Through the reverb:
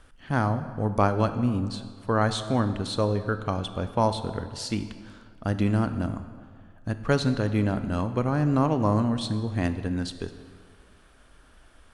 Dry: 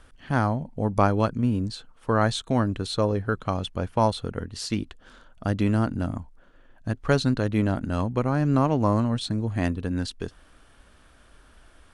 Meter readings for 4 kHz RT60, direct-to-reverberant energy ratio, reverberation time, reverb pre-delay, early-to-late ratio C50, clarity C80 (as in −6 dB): 1.3 s, 10.0 dB, 1.9 s, 19 ms, 11.0 dB, 12.0 dB